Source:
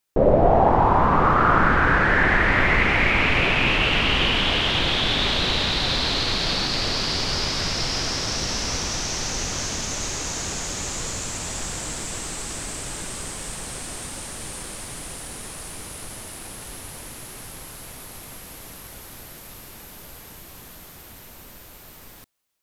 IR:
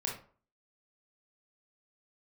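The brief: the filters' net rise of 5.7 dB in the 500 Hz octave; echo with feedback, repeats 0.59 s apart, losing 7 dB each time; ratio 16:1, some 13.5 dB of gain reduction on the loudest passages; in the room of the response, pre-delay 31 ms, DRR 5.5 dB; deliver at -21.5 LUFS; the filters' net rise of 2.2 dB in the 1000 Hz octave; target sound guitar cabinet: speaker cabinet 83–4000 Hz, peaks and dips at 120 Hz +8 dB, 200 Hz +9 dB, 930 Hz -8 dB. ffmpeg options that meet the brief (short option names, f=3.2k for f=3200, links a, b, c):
-filter_complex "[0:a]equalizer=f=500:t=o:g=6,equalizer=f=1k:t=o:g=5,acompressor=threshold=-20dB:ratio=16,aecho=1:1:590|1180|1770|2360|2950:0.447|0.201|0.0905|0.0407|0.0183,asplit=2[a][b];[1:a]atrim=start_sample=2205,adelay=31[c];[b][c]afir=irnorm=-1:irlink=0,volume=-8.5dB[d];[a][d]amix=inputs=2:normalize=0,highpass=83,equalizer=f=120:t=q:w=4:g=8,equalizer=f=200:t=q:w=4:g=9,equalizer=f=930:t=q:w=4:g=-8,lowpass=f=4k:w=0.5412,lowpass=f=4k:w=1.3066,volume=3.5dB"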